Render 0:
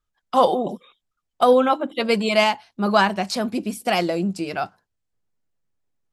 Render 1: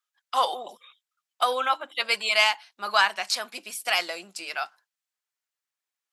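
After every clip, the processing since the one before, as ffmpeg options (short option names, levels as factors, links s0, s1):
-af "highpass=1300,volume=1.26"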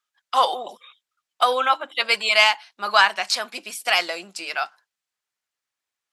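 -af "highshelf=f=11000:g=-9.5,volume=1.78"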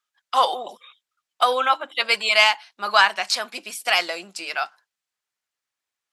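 -af anull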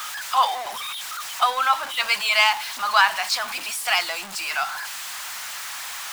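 -af "aeval=exprs='val(0)+0.5*0.0708*sgn(val(0))':c=same,lowshelf=f=620:t=q:w=1.5:g=-11.5,volume=0.668"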